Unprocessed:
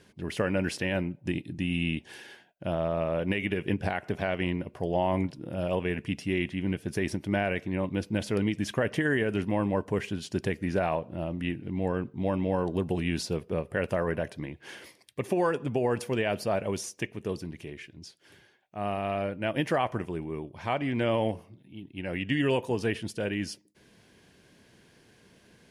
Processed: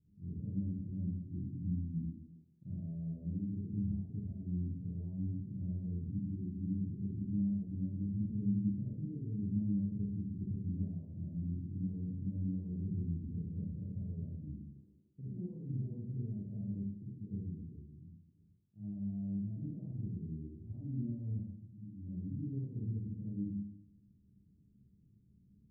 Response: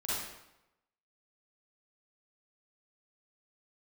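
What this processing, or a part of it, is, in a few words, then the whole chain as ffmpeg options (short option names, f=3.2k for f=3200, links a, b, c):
club heard from the street: -filter_complex "[0:a]alimiter=limit=-20.5dB:level=0:latency=1,lowpass=f=210:w=0.5412,lowpass=f=210:w=1.3066[a];[1:a]atrim=start_sample=2205[b];[a][b]afir=irnorm=-1:irlink=0,volume=-6.5dB"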